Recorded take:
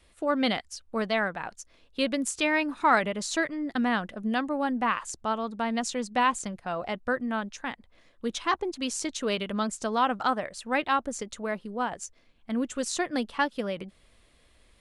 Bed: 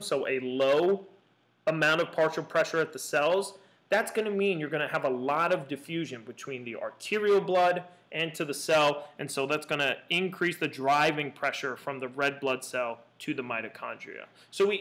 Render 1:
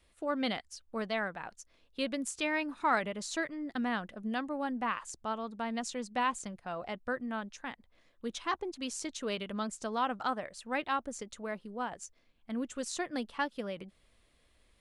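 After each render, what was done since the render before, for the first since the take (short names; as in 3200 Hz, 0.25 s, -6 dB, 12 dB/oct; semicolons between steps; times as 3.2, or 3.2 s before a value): gain -7 dB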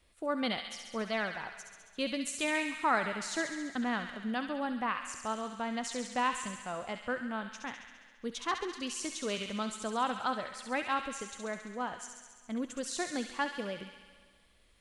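on a send: thin delay 68 ms, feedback 73%, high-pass 1700 Hz, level -5 dB; on the sum: Schroeder reverb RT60 1.8 s, combs from 25 ms, DRR 16 dB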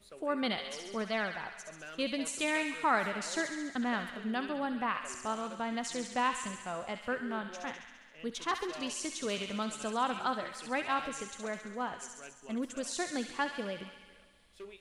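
add bed -23 dB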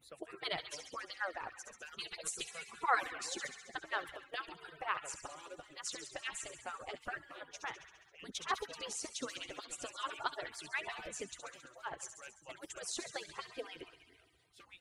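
median-filter separation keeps percussive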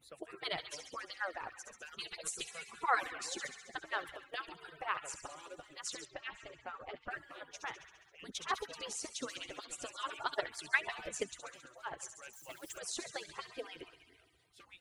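6.05–7.11 air absorption 240 m; 10.29–11.32 transient shaper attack +10 dB, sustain 0 dB; 12.33–12.78 switching spikes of -50.5 dBFS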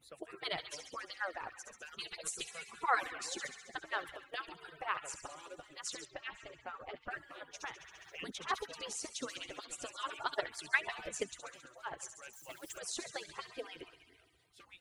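7.6–8.46 three-band squash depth 100%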